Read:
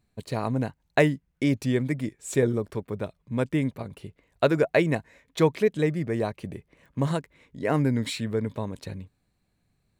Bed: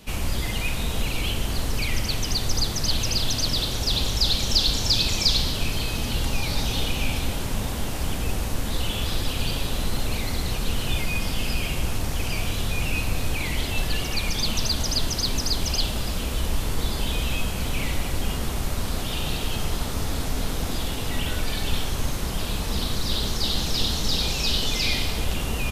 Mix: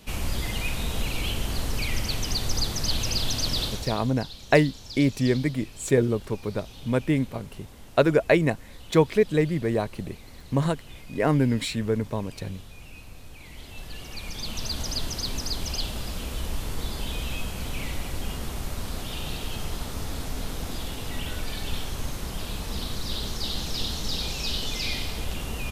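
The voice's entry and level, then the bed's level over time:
3.55 s, +2.0 dB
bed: 3.66 s -2.5 dB
4.13 s -19.5 dB
13.31 s -19.5 dB
14.80 s -5.5 dB

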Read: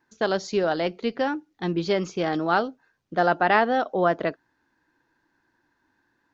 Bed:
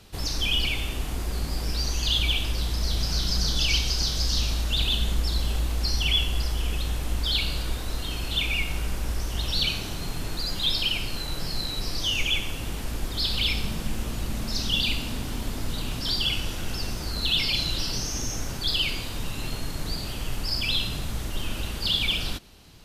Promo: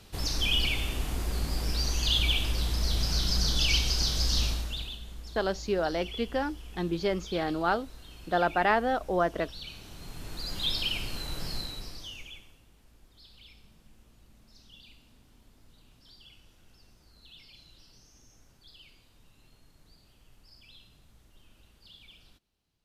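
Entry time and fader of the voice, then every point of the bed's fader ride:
5.15 s, -5.0 dB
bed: 4.46 s -2 dB
5.00 s -18 dB
9.62 s -18 dB
10.61 s -5 dB
11.55 s -5 dB
12.67 s -29 dB

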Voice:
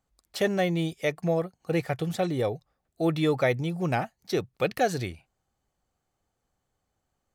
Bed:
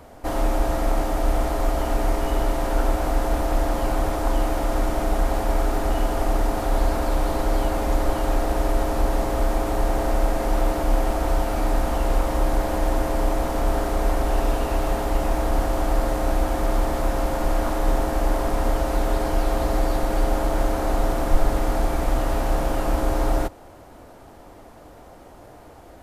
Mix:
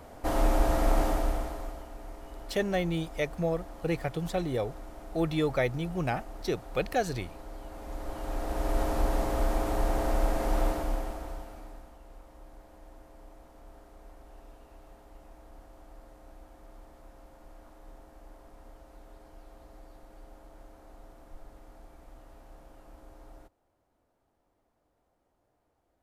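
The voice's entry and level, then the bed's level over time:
2.15 s, -3.5 dB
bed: 1.08 s -3 dB
1.90 s -22 dB
7.61 s -22 dB
8.81 s -6 dB
10.66 s -6 dB
11.98 s -30 dB

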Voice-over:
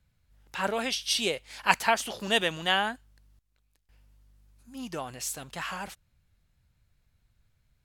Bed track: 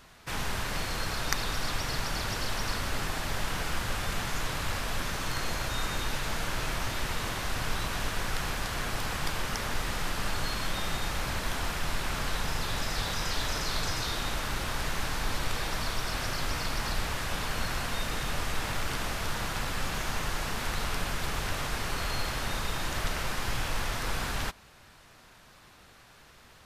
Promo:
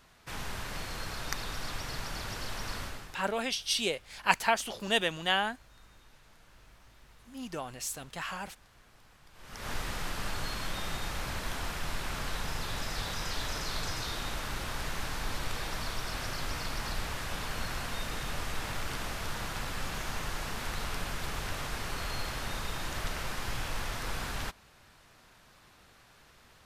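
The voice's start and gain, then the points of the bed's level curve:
2.60 s, -2.5 dB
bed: 2.83 s -6 dB
3.36 s -27.5 dB
9.29 s -27.5 dB
9.69 s -4 dB

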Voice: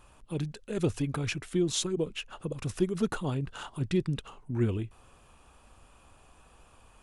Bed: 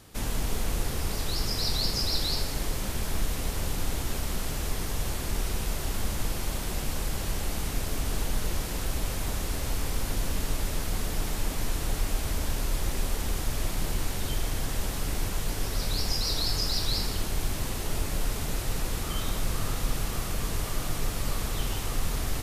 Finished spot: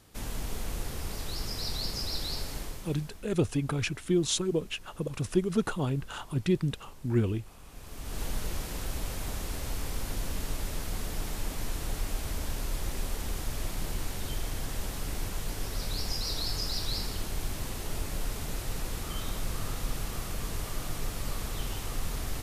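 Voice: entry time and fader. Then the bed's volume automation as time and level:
2.55 s, +1.5 dB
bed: 2.56 s -6 dB
3.27 s -22.5 dB
7.62 s -22.5 dB
8.23 s -4.5 dB

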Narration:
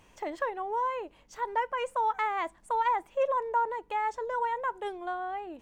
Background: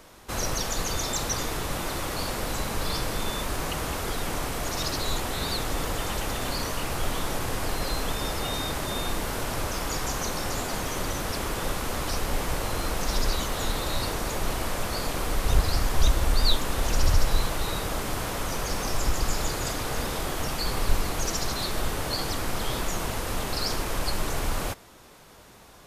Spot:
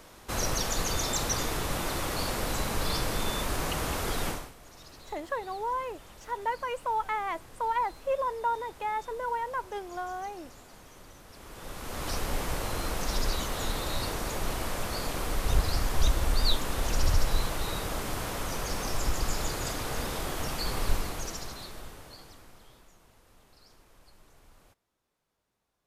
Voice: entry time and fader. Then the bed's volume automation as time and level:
4.90 s, -1.5 dB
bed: 4.29 s -1 dB
4.55 s -21.5 dB
11.28 s -21.5 dB
12.10 s -3.5 dB
20.90 s -3.5 dB
22.97 s -30.5 dB

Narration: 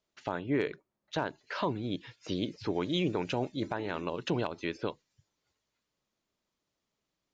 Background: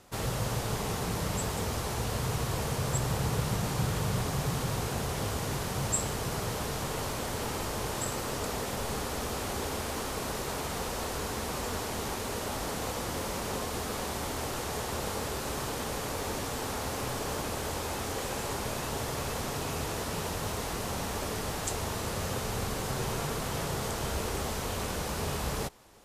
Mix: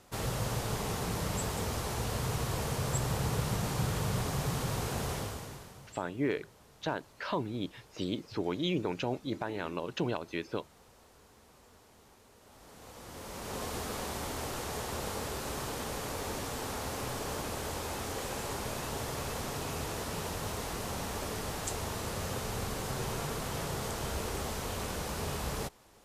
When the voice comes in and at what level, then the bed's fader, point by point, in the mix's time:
5.70 s, -1.5 dB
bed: 5.13 s -2 dB
6.02 s -25.5 dB
12.37 s -25.5 dB
13.65 s -3 dB

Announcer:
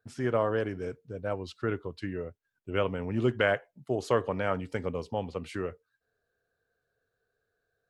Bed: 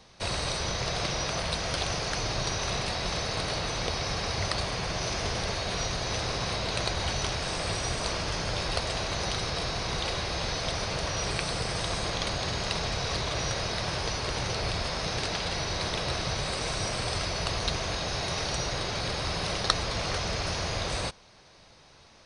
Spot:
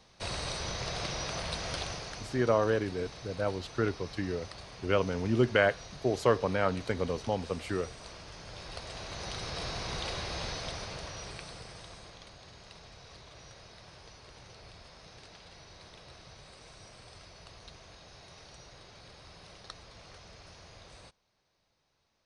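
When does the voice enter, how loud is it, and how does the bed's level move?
2.15 s, +1.0 dB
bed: 1.76 s -5.5 dB
2.45 s -16.5 dB
8.35 s -16.5 dB
9.67 s -5.5 dB
10.43 s -5.5 dB
12.31 s -21.5 dB

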